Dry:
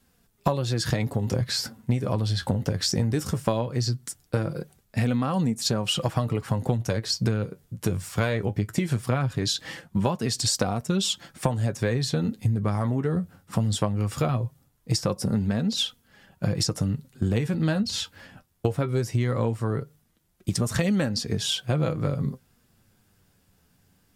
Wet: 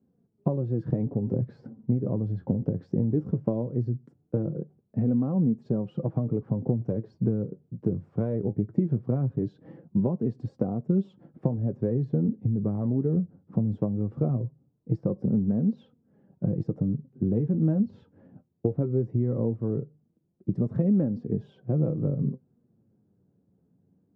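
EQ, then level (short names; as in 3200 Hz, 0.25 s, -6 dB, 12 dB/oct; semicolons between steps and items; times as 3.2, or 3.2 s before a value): Butterworth band-pass 240 Hz, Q 0.72; +1.5 dB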